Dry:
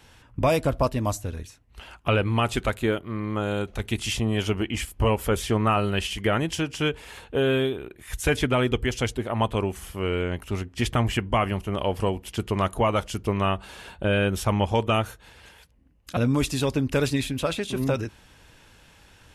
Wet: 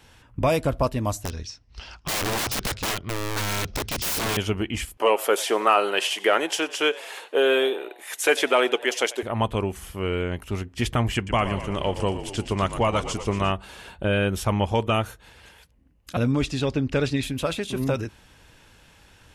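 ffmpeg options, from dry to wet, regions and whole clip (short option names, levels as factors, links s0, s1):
-filter_complex "[0:a]asettb=1/sr,asplit=3[s0][s1][s2];[s0]atrim=end=1.244[s3];[s1]atrim=start=1.24:end=4.37,asetpts=PTS-STARTPTS,afade=t=in:d=0.004:c=qsin,afade=t=out:st=3.126:d=0.004:c=qsin,asubboost=boost=4:cutoff=200,lowpass=f=5300:t=q:w=7.3,aeval=exprs='(mod(11.9*val(0)+1,2)-1)/11.9':c=same[s4];[s2]atrim=start=4.366[s5];[s3][s4]acrossfade=d=0.004:c1=hsin:c2=qsin[s6];[s6][s5]acrossfade=d=0.004:c1=qsin:c2=hsin,asettb=1/sr,asplit=3[s7][s8][s9];[s7]atrim=end=4.974[s10];[s8]atrim=start=4.97:end=9.23,asetpts=PTS-STARTPTS,afade=t=in:d=0.004:c=qsin,afade=t=out:st=4.256:d=0.004:c=qsin,highpass=f=370:w=0.5412,highpass=f=370:w=1.3066,acontrast=27,asplit=5[s11][s12][s13][s14][s15];[s12]adelay=92,afreqshift=110,volume=0.0891[s16];[s13]adelay=184,afreqshift=220,volume=0.0479[s17];[s14]adelay=276,afreqshift=330,volume=0.026[s18];[s15]adelay=368,afreqshift=440,volume=0.014[s19];[s11][s16][s17][s18][s19]amix=inputs=5:normalize=0,atrim=end_sample=187866[s20];[s9]atrim=start=9.226[s21];[s10][s20]acrossfade=d=0.004:c1=hsin:c2=qsin[s22];[s22][s21]acrossfade=d=0.004:c1=qsin:c2=hsin,asettb=1/sr,asplit=3[s23][s24][s25];[s23]atrim=end=11.154[s26];[s24]atrim=start=11.15:end=13.52,asetpts=PTS-STARTPTS,afade=t=in:d=0.004:c=qsin,afade=t=out:st=2.366:d=0.004:c=qsin,lowpass=f=8500:w=0.5412,lowpass=f=8500:w=1.3066,aemphasis=mode=production:type=cd,asplit=9[s27][s28][s29][s30][s31][s32][s33][s34][s35];[s28]adelay=117,afreqshift=-46,volume=0.282[s36];[s29]adelay=234,afreqshift=-92,volume=0.178[s37];[s30]adelay=351,afreqshift=-138,volume=0.112[s38];[s31]adelay=468,afreqshift=-184,volume=0.0708[s39];[s32]adelay=585,afreqshift=-230,volume=0.0442[s40];[s33]adelay=702,afreqshift=-276,volume=0.0279[s41];[s34]adelay=819,afreqshift=-322,volume=0.0176[s42];[s35]adelay=936,afreqshift=-368,volume=0.0111[s43];[s27][s36][s37][s38][s39][s40][s41][s42][s43]amix=inputs=9:normalize=0,atrim=end_sample=104517[s44];[s25]atrim=start=13.516[s45];[s26][s44]acrossfade=d=0.004:c1=hsin:c2=qsin[s46];[s46][s45]acrossfade=d=0.004:c1=qsin:c2=hsin,asettb=1/sr,asplit=3[s47][s48][s49];[s47]atrim=end=16.314[s50];[s48]atrim=start=16.31:end=17.23,asetpts=PTS-STARTPTS,afade=t=in:d=0.004:c=qsin,afade=t=out:st=0.916:d=0.004:c=qsin,lowpass=5500,equalizer=f=1000:w=7.8:g=-6[s51];[s49]atrim=start=17.226[s52];[s50][s51]acrossfade=d=0.004:c1=hsin:c2=qsin[s53];[s53][s52]acrossfade=d=0.004:c1=qsin:c2=hsin"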